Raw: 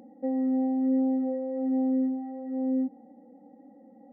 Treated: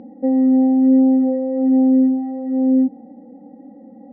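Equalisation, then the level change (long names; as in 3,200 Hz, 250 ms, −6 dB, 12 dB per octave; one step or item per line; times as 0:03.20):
high-frequency loss of the air 260 metres
low-shelf EQ 340 Hz +7.5 dB
+8.0 dB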